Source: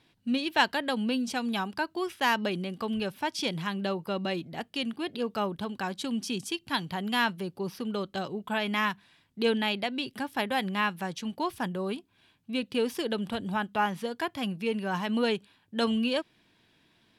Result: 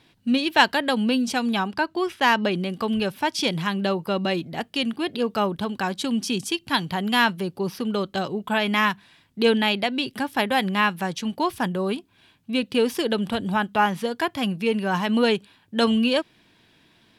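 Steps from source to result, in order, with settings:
0:01.53–0:02.63: high-shelf EQ 7,500 Hz −9 dB
level +7 dB

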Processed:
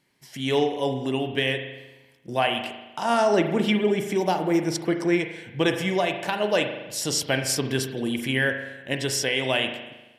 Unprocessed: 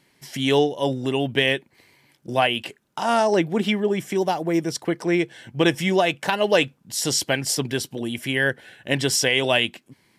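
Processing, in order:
automatic gain control gain up to 9 dB
spring reverb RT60 1.1 s, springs 38 ms, chirp 50 ms, DRR 6 dB
level −8 dB

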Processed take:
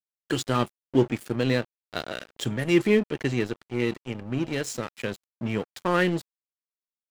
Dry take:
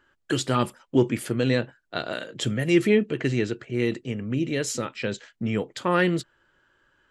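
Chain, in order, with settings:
dead-zone distortion −35 dBFS

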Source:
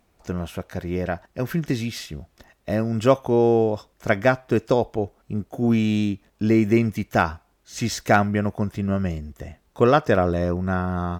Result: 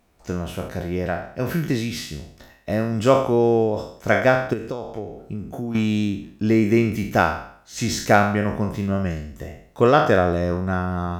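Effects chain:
peak hold with a decay on every bin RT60 0.59 s
0:04.53–0:05.75: downward compressor 8 to 1, threshold −26 dBFS, peak gain reduction 13 dB

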